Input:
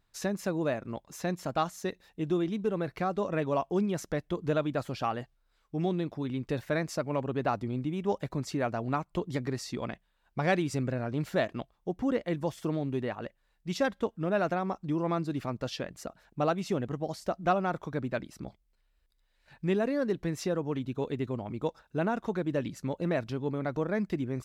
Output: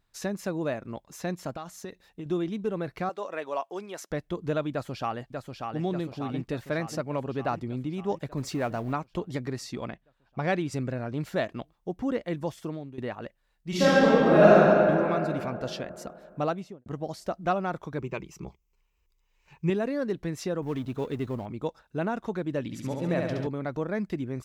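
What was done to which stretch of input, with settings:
1.55–2.26 s: compression 10:1, threshold -33 dBFS
3.09–4.11 s: high-pass 530 Hz
4.71–5.82 s: echo throw 590 ms, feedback 65%, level -4.5 dB
8.37–8.93 s: companding laws mixed up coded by mu
9.89–10.71 s: treble shelf 4.5 kHz -> 7.6 kHz -9.5 dB
12.51–12.98 s: fade out, to -15 dB
13.69–14.55 s: reverb throw, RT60 2.9 s, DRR -12 dB
15.05–15.53 s: peaking EQ 2.3 kHz +6.5 dB 0.26 oct
16.44–16.86 s: studio fade out
17.98–19.70 s: rippled EQ curve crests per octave 0.75, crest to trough 12 dB
20.62–21.46 s: companding laws mixed up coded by mu
22.63–23.47 s: flutter echo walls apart 11.8 m, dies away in 1.2 s

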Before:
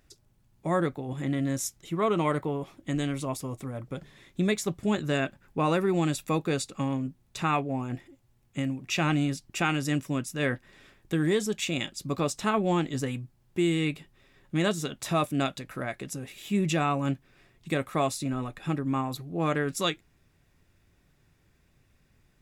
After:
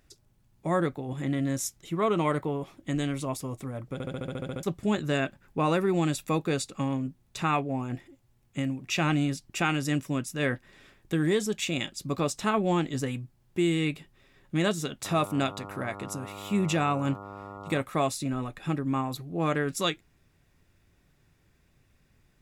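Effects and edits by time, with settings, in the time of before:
3.93 s: stutter in place 0.07 s, 10 plays
15.04–17.81 s: mains buzz 100 Hz, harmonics 14, -42 dBFS -1 dB/octave

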